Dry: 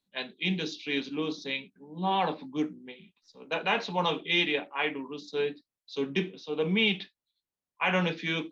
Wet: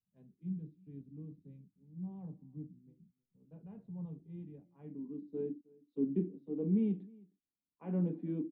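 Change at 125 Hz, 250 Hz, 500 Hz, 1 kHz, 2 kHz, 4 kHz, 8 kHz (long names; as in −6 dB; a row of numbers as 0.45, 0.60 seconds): −3.0 dB, −4.0 dB, −12.0 dB, below −30 dB, below −40 dB, below −40 dB, can't be measured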